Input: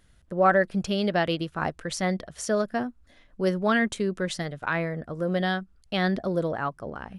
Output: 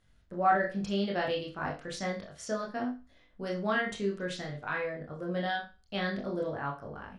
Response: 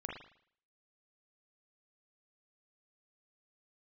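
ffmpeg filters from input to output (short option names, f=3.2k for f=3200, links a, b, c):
-filter_complex "[0:a]lowpass=9.4k[a];[1:a]atrim=start_sample=2205,asetrate=83790,aresample=44100[b];[a][b]afir=irnorm=-1:irlink=0"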